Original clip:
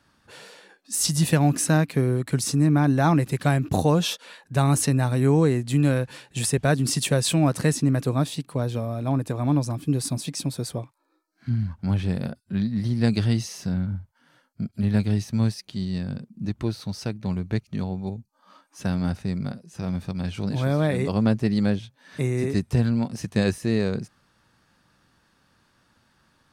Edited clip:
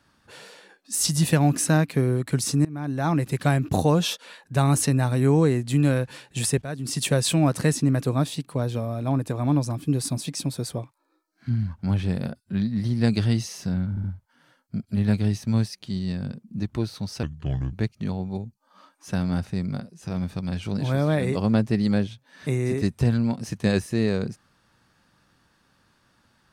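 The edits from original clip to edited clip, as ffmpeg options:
-filter_complex "[0:a]asplit=7[a][b][c][d][e][f][g];[a]atrim=end=2.65,asetpts=PTS-STARTPTS,afade=t=out:st=2.646:d=0.004:c=hsin:silence=0.0668344[h];[b]atrim=start=2.65:end=6.62,asetpts=PTS-STARTPTS,afade=t=in:d=0.72:silence=0.0668344,afade=t=out:st=3.966:d=0.004:c=hsin:silence=0.223872[i];[c]atrim=start=6.62:end=13.972,asetpts=PTS-STARTPTS,afade=t=in:d=0.43:c=qua:silence=0.223872[j];[d]atrim=start=13.898:end=13.972[k];[e]atrim=start=13.898:end=17.094[l];[f]atrim=start=17.09:end=17.45,asetpts=PTS-STARTPTS,asetrate=31752,aresample=44100[m];[g]atrim=start=17.446[n];[h][i][j]concat=n=3:v=0:a=1[o];[o][k]acrossfade=d=0.004:c1=hsin:c2=hsin[p];[p][l]acrossfade=d=0.004:c1=hsin:c2=hsin[q];[q][m]acrossfade=d=0.004:c1=hsin:c2=hsin[r];[r][n]acrossfade=d=0.004:c1=hsin:c2=hsin"

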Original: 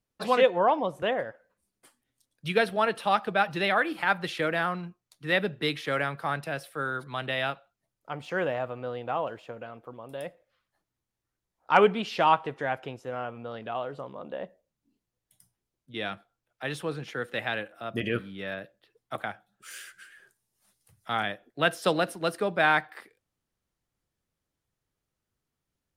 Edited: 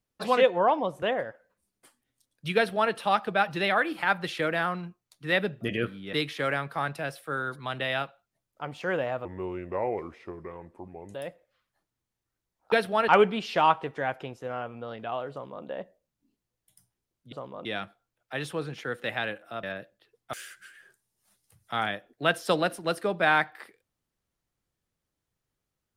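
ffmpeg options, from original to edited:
-filter_complex "[0:a]asplit=11[a][b][c][d][e][f][g][h][i][j][k];[a]atrim=end=5.612[l];[b]atrim=start=17.928:end=18.452[m];[c]atrim=start=5.608:end=8.734[n];[d]atrim=start=8.73:end=10.13,asetpts=PTS-STARTPTS,asetrate=32634,aresample=44100,atrim=end_sample=83432,asetpts=PTS-STARTPTS[o];[e]atrim=start=10.126:end=11.712[p];[f]atrim=start=2.558:end=2.922[q];[g]atrim=start=11.708:end=15.952[r];[h]atrim=start=13.938:end=14.272[s];[i]atrim=start=15.948:end=17.932[t];[j]atrim=start=18.448:end=19.152[u];[k]atrim=start=19.698[v];[l][m]acrossfade=d=0.004:c1=hsin:c2=hsin[w];[w][n]acrossfade=d=0.004:c1=hsin:c2=hsin[x];[x][o]acrossfade=d=0.004:c1=hsin:c2=hsin[y];[y][p]acrossfade=d=0.004:c1=hsin:c2=hsin[z];[z][q]acrossfade=d=0.004:c1=hsin:c2=hsin[aa];[aa][r]acrossfade=d=0.004:c1=hsin:c2=hsin[ab];[ab][s]acrossfade=d=0.004:c1=hsin:c2=hsin[ac];[ac][t]acrossfade=d=0.004:c1=hsin:c2=hsin[ad];[ad][u]acrossfade=d=0.004:c1=hsin:c2=hsin[ae];[ae][v]acrossfade=d=0.004:c1=hsin:c2=hsin"

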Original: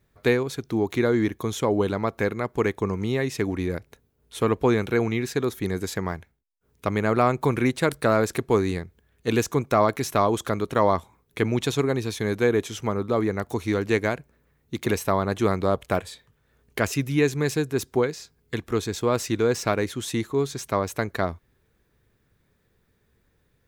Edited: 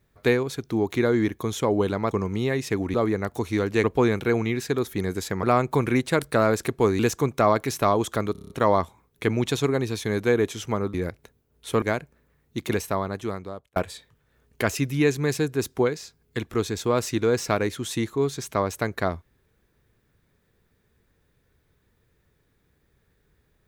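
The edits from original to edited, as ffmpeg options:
-filter_complex "[0:a]asplit=15[a][b][c][d][e][f][g][h][i][j][k][l][m][n][o];[a]atrim=end=2.112[p];[b]atrim=start=2.788:end=3.622[q];[c]atrim=start=13.088:end=13.992[r];[d]atrim=start=4.498:end=6.092[s];[e]atrim=start=7.128:end=8.692[t];[f]atrim=start=9.318:end=10.682[u];[g]atrim=start=10.648:end=10.682[v];[h]atrim=start=10.648:end=10.682[w];[i]atrim=start=10.648:end=10.682[x];[j]atrim=start=10.648:end=10.682[y];[k]atrim=start=10.648:end=10.682[z];[l]atrim=start=10.648:end=13.092[aa];[m]atrim=start=3.618:end=4.502[ab];[n]atrim=start=13.988:end=15.93,asetpts=PTS-STARTPTS,afade=t=out:st=0.752:d=1.19[ac];[o]atrim=start=15.93,asetpts=PTS-STARTPTS,afade=t=in:d=0.004:c=hsin[ad];[p][q]acrossfade=d=0.004:c1=hsin:c2=hsin[ae];[ae][r]acrossfade=d=0.004:c1=hsin:c2=hsin[af];[af][s]acrossfade=d=0.004:c1=hsin:c2=hsin[ag];[ag][t]acrossfade=d=0.004:c1=hsin:c2=hsin[ah];[ah][u]acrossfade=d=0.004:c1=hsin:c2=hsin[ai];[ai][v]acrossfade=d=0.004:c1=hsin:c2=hsin[aj];[aj][w]acrossfade=d=0.004:c1=hsin:c2=hsin[ak];[ak][x]acrossfade=d=0.004:c1=hsin:c2=hsin[al];[al][y]acrossfade=d=0.004:c1=hsin:c2=hsin[am];[am][z]acrossfade=d=0.004:c1=hsin:c2=hsin[an];[an][aa]acrossfade=d=0.004:c1=hsin:c2=hsin[ao];[ao][ab]acrossfade=d=0.004:c1=hsin:c2=hsin[ap];[ac][ad]concat=n=2:v=0:a=1[aq];[ap][aq]acrossfade=d=0.004:c1=hsin:c2=hsin"

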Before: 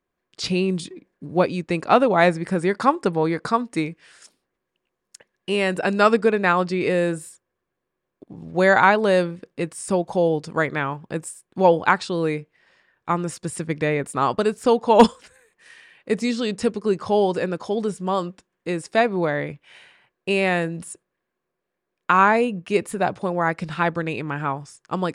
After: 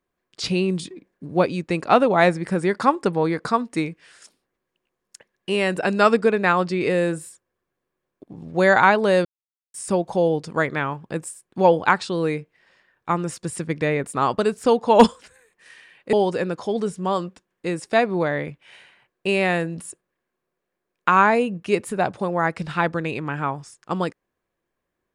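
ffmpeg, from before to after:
-filter_complex "[0:a]asplit=4[a][b][c][d];[a]atrim=end=9.25,asetpts=PTS-STARTPTS,afade=t=out:st=9.246:d=0.004:c=hsin[e];[b]atrim=start=9.25:end=9.74,asetpts=PTS-STARTPTS,volume=0[f];[c]atrim=start=9.74:end=16.132,asetpts=PTS-STARTPTS,afade=t=in:d=0.004:c=hsin[g];[d]atrim=start=17.148[h];[e][f][g]concat=n=3:v=0:a=1[i];[i][h]acrossfade=d=0.004:c1=hsin:c2=hsin"

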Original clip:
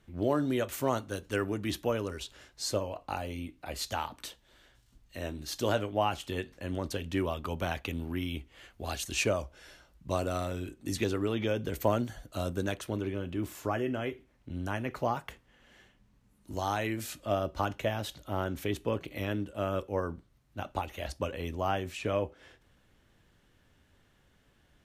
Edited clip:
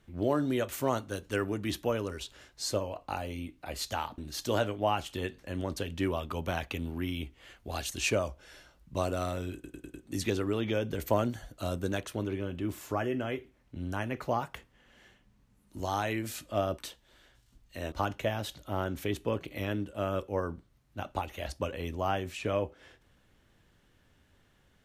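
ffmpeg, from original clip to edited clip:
-filter_complex "[0:a]asplit=8[a][b][c][d][e][f][g][h];[a]atrim=end=4.182[i];[b]atrim=start=5.318:end=10.782[j];[c]atrim=start=10.678:end=10.782[k];[d]atrim=start=10.678:end=10.782[l];[e]atrim=start=10.678:end=10.782[m];[f]atrim=start=10.678:end=17.522[n];[g]atrim=start=4.178:end=5.322[o];[h]atrim=start=17.518[p];[i][j]acrossfade=d=0.004:c1=hsin:c2=hsin[q];[q][k]acrossfade=d=0.004:c1=hsin:c2=hsin[r];[r][l]acrossfade=d=0.004:c1=hsin:c2=hsin[s];[s][m]acrossfade=d=0.004:c1=hsin:c2=hsin[t];[t][n]acrossfade=d=0.004:c1=hsin:c2=hsin[u];[u][o]acrossfade=d=0.004:c1=hsin:c2=hsin[v];[v][p]acrossfade=d=0.004:c1=hsin:c2=hsin"

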